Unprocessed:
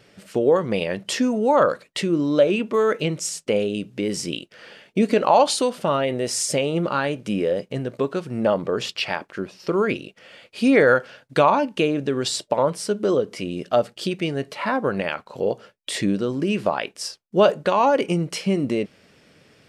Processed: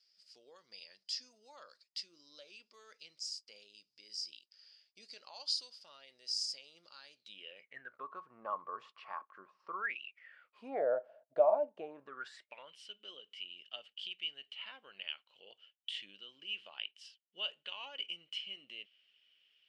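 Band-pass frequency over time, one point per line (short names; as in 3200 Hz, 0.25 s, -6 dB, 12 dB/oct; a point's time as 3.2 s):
band-pass, Q 15
7.12 s 4900 Hz
8.1 s 1100 Hz
9.74 s 1100 Hz
10.02 s 3000 Hz
10.84 s 640 Hz
11.73 s 640 Hz
12.66 s 3000 Hz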